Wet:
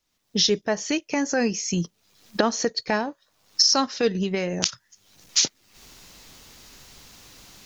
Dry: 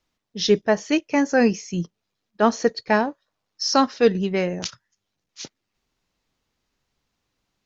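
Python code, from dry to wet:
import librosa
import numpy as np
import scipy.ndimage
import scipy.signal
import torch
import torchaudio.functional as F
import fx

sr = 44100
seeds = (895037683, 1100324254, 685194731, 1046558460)

y = fx.recorder_agc(x, sr, target_db=-11.0, rise_db_per_s=46.0, max_gain_db=30)
y = fx.high_shelf(y, sr, hz=4000.0, db=11.5)
y = y * 10.0 ** (-6.0 / 20.0)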